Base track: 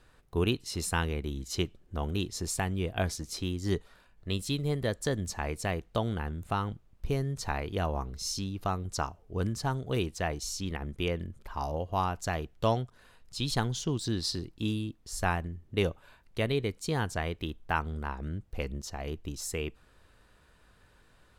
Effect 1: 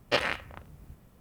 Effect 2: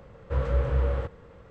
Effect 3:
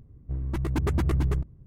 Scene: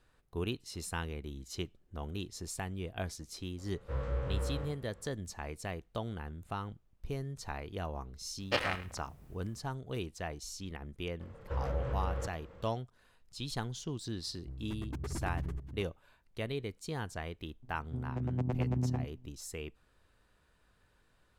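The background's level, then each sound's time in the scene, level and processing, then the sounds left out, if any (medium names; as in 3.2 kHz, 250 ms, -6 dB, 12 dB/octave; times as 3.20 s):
base track -8 dB
3.58 s: add 2 -10.5 dB + spectral sustain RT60 0.57 s
8.40 s: add 1 -5 dB + delay 105 ms -14.5 dB
11.20 s: add 2 -4 dB + compression 3:1, threshold -28 dBFS
14.17 s: add 3 -14 dB + chunks repeated in reverse 457 ms, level -9.5 dB
17.62 s: add 3 -3 dB + vocoder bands 4, saw 125 Hz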